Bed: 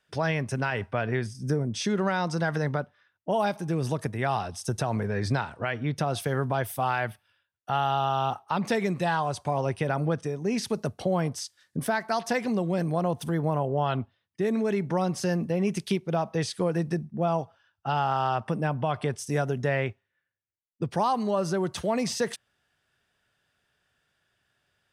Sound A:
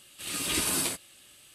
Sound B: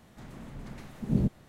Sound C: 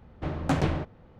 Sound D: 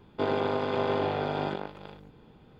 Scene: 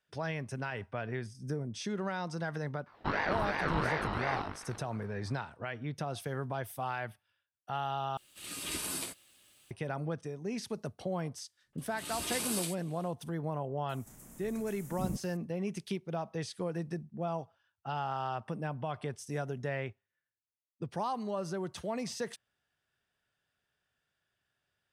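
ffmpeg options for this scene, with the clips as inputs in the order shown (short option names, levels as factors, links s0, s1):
-filter_complex "[1:a]asplit=2[s0][s1];[0:a]volume=0.335[s2];[4:a]aeval=exprs='val(0)*sin(2*PI*890*n/s+890*0.5/2.8*sin(2*PI*2.8*n/s))':c=same[s3];[s0]acrusher=bits=9:mix=0:aa=0.000001[s4];[s1]acrossover=split=250|1900[s5][s6][s7];[s6]adelay=110[s8];[s7]adelay=160[s9];[s5][s8][s9]amix=inputs=3:normalize=0[s10];[2:a]aexciter=amount=7.8:drive=8.5:freq=6000[s11];[s2]asplit=2[s12][s13];[s12]atrim=end=8.174[s14];[s4]atrim=end=1.54,asetpts=PTS-STARTPTS,volume=0.355[s15];[s13]atrim=start=9.706[s16];[s3]atrim=end=2.59,asetpts=PTS-STARTPTS,volume=0.794,afade=t=in:d=0.004:c=hsin,afade=t=out:st=2.586:d=0.004:c=hsin,adelay=2860[s17];[s10]atrim=end=1.54,asetpts=PTS-STARTPTS,volume=0.447,afade=t=in:d=0.1,afade=t=out:st=1.44:d=0.1,adelay=512442S[s18];[s11]atrim=end=1.48,asetpts=PTS-STARTPTS,volume=0.282,afade=t=in:d=0.004:c=hsin,afade=t=out:st=1.476:d=0.004:c=hsin,adelay=13890[s19];[s14][s15]acrossfade=d=0.004:c1=hsin:c2=hsin[s20];[s20][s16]acrossfade=d=0.004:c1=hsin:c2=hsin[s21];[s21][s17][s18][s19]amix=inputs=4:normalize=0"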